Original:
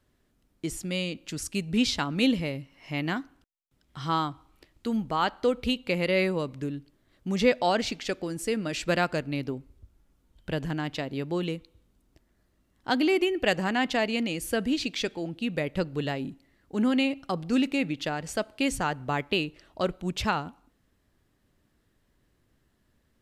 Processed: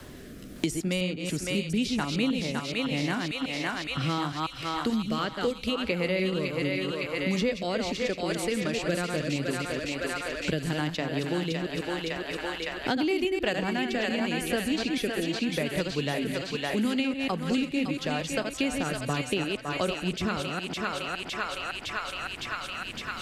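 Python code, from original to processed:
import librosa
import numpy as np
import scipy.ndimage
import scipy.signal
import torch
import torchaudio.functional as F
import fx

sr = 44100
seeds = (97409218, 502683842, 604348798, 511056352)

p1 = fx.reverse_delay(x, sr, ms=144, wet_db=-5.5)
p2 = fx.rotary(p1, sr, hz=0.8)
p3 = p2 + fx.echo_thinned(p2, sr, ms=560, feedback_pct=61, hz=680.0, wet_db=-5.0, dry=0)
y = fx.band_squash(p3, sr, depth_pct=100)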